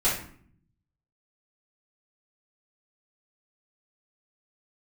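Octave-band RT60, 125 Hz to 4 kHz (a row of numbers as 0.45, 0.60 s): 1.2, 0.95, 0.55, 0.55, 0.50, 0.40 s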